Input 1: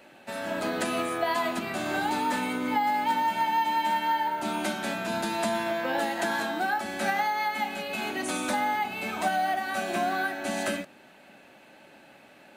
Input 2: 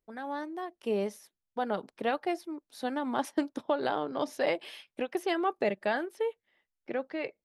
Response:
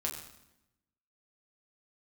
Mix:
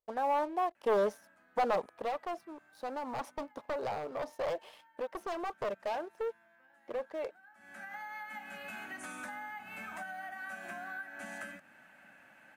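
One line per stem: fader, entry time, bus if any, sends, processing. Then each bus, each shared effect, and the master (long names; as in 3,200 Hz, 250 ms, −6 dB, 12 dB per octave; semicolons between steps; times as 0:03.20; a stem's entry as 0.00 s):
−8.0 dB, 0.75 s, no send, graphic EQ with 15 bands 400 Hz −11 dB, 1,600 Hz +10 dB, 4,000 Hz −9 dB; downward compressor 4 to 1, threshold −34 dBFS, peak gain reduction 13.5 dB; automatic ducking −22 dB, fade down 1.40 s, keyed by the second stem
0:01.72 −9.5 dB → 0:02.10 −17.5 dB, 0.00 s, no send, wavefolder on the positive side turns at −27.5 dBFS; flat-topped bell 750 Hz +11.5 dB; leveller curve on the samples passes 2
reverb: not used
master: no processing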